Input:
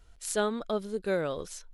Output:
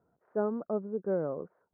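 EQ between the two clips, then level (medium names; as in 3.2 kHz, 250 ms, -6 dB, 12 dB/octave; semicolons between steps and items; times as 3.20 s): high-pass 130 Hz 24 dB/octave; Bessel low-pass 760 Hz, order 8; 0.0 dB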